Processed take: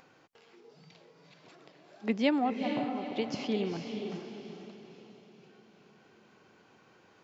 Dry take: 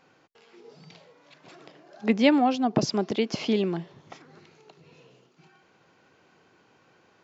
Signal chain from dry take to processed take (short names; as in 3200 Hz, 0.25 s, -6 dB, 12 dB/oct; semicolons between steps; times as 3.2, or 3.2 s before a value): 2.5–3.16 ladder low-pass 1100 Hz, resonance 55%; diffused feedback echo 0.451 s, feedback 44%, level -5.5 dB; upward compressor, threshold -46 dBFS; gain -7.5 dB